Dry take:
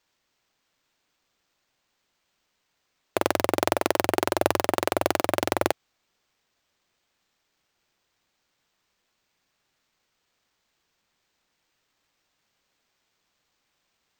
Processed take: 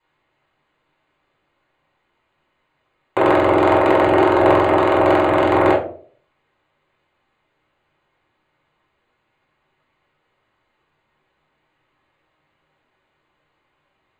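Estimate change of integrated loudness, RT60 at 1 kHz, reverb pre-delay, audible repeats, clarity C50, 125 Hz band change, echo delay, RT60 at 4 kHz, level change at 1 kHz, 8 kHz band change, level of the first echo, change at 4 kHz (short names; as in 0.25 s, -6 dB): +10.5 dB, 0.40 s, 3 ms, none, 6.0 dB, +11.5 dB, none, 0.25 s, +11.0 dB, under -10 dB, none, +1.5 dB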